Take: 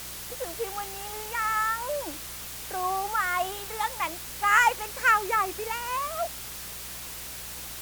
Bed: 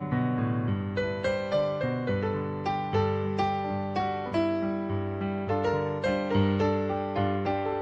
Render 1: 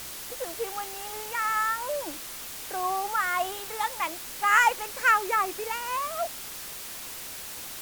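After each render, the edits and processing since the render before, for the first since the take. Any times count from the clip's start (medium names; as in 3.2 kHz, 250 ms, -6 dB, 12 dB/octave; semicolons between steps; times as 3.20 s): de-hum 60 Hz, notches 3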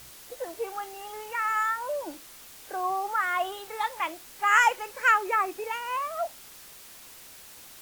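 noise print and reduce 9 dB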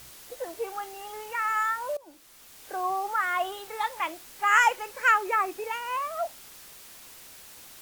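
1.97–2.74 s: fade in, from -20.5 dB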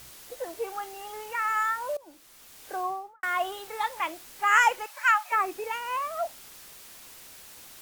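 2.74–3.23 s: studio fade out; 4.86–5.32 s: Chebyshev high-pass 580 Hz, order 8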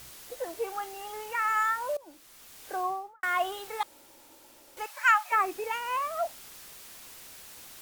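3.83–4.77 s: room tone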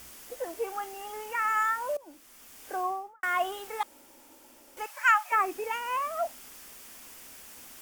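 graphic EQ with 31 bands 125 Hz -11 dB, 250 Hz +7 dB, 4 kHz -7 dB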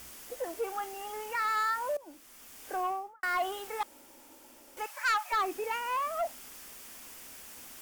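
saturation -24 dBFS, distortion -10 dB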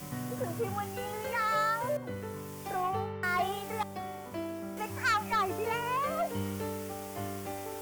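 add bed -11 dB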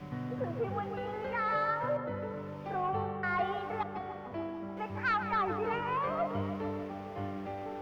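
distance through air 320 m; filtered feedback delay 149 ms, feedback 76%, low-pass 2.1 kHz, level -9 dB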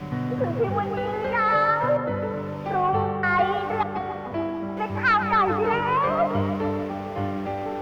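trim +10.5 dB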